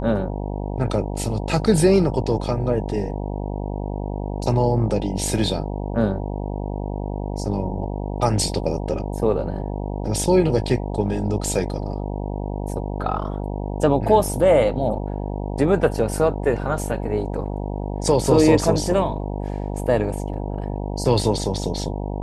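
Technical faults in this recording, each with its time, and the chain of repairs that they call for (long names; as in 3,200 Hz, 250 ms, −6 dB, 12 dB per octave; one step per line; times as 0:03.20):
mains buzz 50 Hz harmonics 19 −27 dBFS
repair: hum removal 50 Hz, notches 19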